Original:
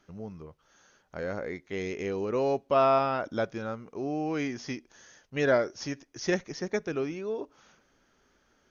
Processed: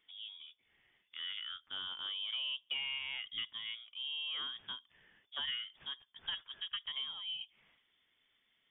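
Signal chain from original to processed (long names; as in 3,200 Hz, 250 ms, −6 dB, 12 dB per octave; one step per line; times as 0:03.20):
downward compressor 12 to 1, threshold −27 dBFS, peak gain reduction 9 dB
voice inversion scrambler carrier 3,500 Hz
level −8.5 dB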